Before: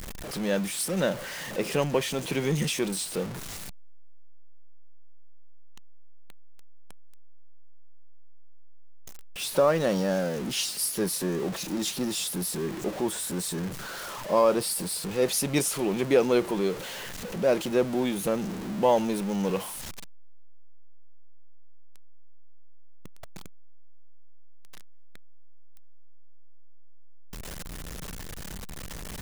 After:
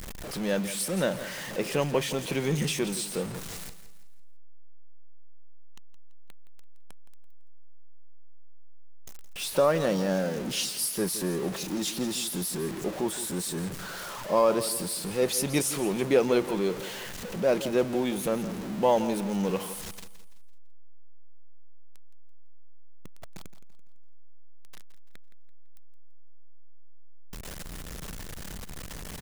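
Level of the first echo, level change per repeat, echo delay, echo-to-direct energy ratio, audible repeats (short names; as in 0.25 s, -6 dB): -13.5 dB, -8.5 dB, 0.168 s, -13.0 dB, 3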